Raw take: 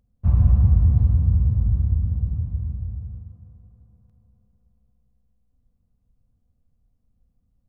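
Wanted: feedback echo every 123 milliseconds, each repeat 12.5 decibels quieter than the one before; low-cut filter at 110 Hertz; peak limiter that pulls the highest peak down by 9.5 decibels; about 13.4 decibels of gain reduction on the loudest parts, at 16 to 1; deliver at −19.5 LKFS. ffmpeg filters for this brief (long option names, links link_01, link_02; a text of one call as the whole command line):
ffmpeg -i in.wav -af "highpass=110,acompressor=threshold=-31dB:ratio=16,alimiter=level_in=10dB:limit=-24dB:level=0:latency=1,volume=-10dB,aecho=1:1:123|246|369:0.237|0.0569|0.0137,volume=21.5dB" out.wav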